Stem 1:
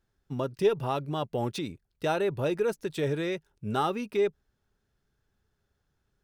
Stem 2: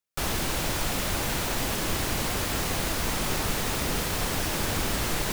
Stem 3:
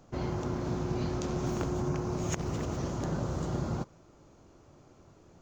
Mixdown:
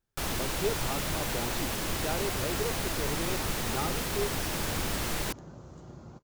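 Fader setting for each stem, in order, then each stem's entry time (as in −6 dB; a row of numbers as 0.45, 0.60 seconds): −7.5, −4.0, −14.5 decibels; 0.00, 0.00, 2.35 seconds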